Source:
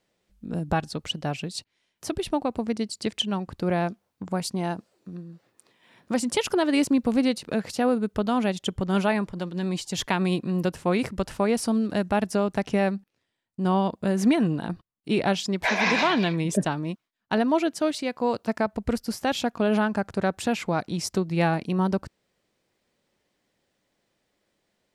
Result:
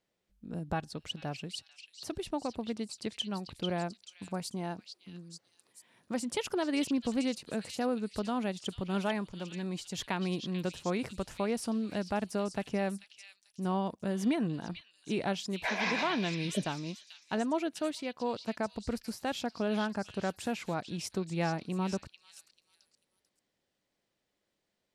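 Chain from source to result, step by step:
echo through a band-pass that steps 441 ms, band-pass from 3,700 Hz, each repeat 0.7 octaves, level −3 dB
level −9 dB

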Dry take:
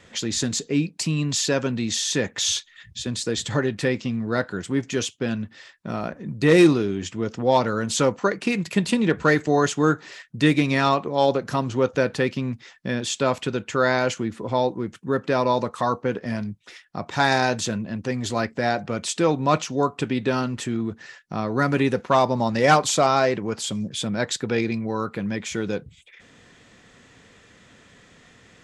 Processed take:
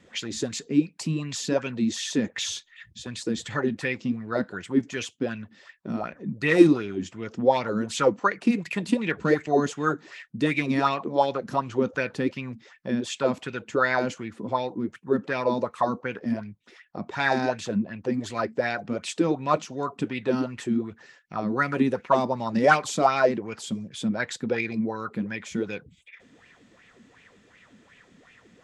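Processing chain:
0:16.32–0:18.14: high-shelf EQ 6,200 Hz −7 dB
auto-filter bell 2.7 Hz 200–2,600 Hz +15 dB
level −9 dB

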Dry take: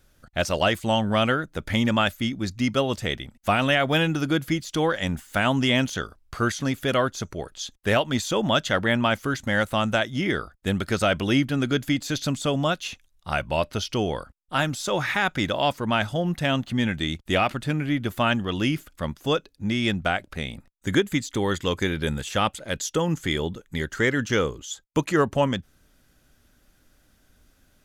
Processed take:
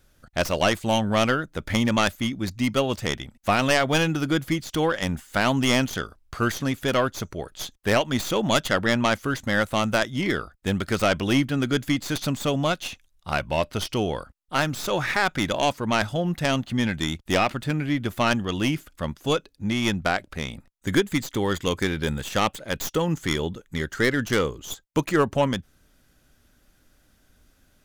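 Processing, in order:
stylus tracing distortion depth 0.11 ms

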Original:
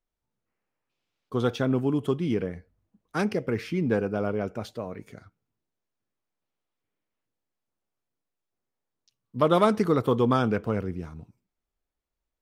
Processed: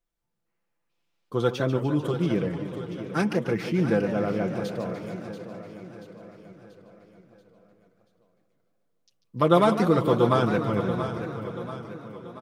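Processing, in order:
comb filter 5.9 ms, depth 53%
repeating echo 684 ms, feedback 51%, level −11 dB
feedback echo with a swinging delay time 149 ms, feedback 73%, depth 205 cents, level −11 dB

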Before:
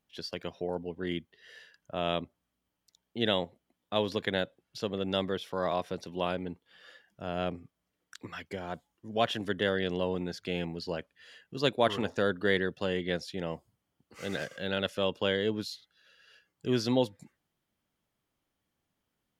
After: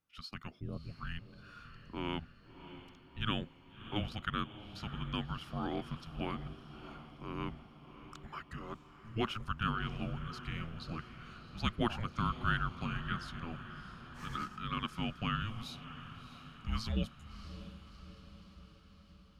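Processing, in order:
parametric band 1,600 Hz +8.5 dB 0.49 octaves
frequency shifter −330 Hz
feedback delay with all-pass diffusion 654 ms, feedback 59%, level −12.5 dB
level −7.5 dB

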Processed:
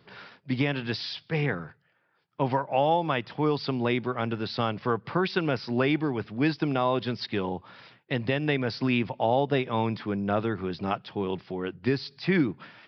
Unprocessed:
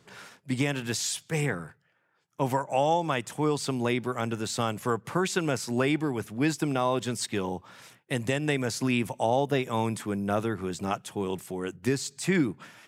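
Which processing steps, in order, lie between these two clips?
downsampling to 11,025 Hz
level +1 dB

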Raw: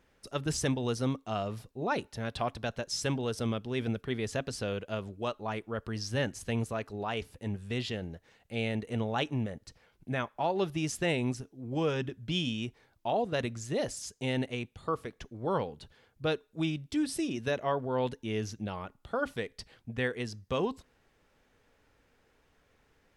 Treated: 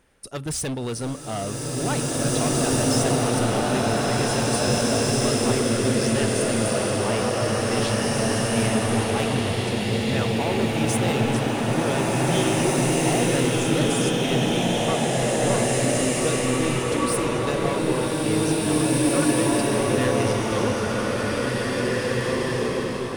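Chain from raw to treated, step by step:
parametric band 9,300 Hz +14 dB 0.28 octaves
hard clipping −29.5 dBFS, distortion −10 dB
slow-attack reverb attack 2,250 ms, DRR −8.5 dB
level +5 dB

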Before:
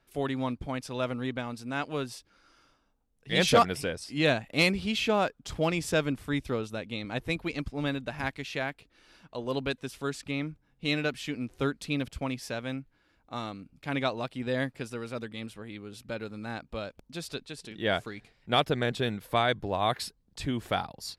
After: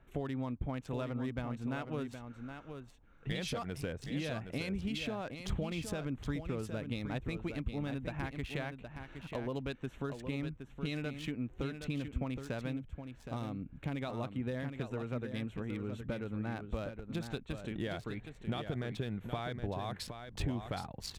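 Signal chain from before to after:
adaptive Wiener filter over 9 samples
brickwall limiter −21.5 dBFS, peak gain reduction 9 dB
downward compressor 5 to 1, threshold −42 dBFS, peak gain reduction 15 dB
low-shelf EQ 180 Hz +9 dB
on a send: single-tap delay 768 ms −8 dB
0:12.69–0:13.97: on the sum: dynamic equaliser 1,400 Hz, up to −5 dB, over −59 dBFS, Q 0.89
level +3.5 dB

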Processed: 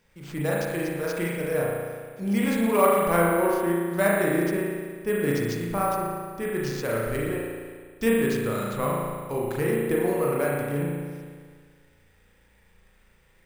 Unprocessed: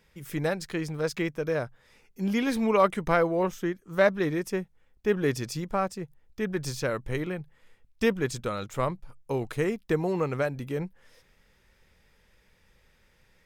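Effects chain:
spring reverb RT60 1.7 s, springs 35 ms, chirp 25 ms, DRR −4.5 dB
bad sample-rate conversion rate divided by 4×, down none, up hold
level −2.5 dB

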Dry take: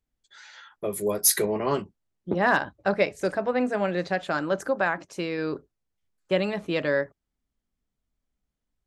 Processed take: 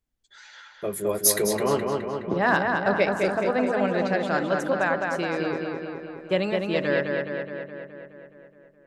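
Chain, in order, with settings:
feedback echo with a low-pass in the loop 210 ms, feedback 66%, low-pass 4,500 Hz, level −3.5 dB

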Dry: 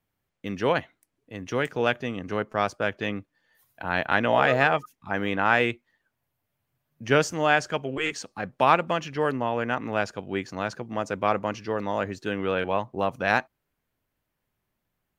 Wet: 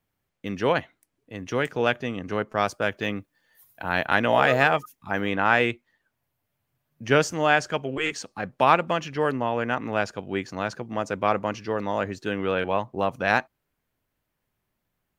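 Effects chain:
0:02.57–0:05.21: high-shelf EQ 8,300 Hz +11 dB
level +1 dB

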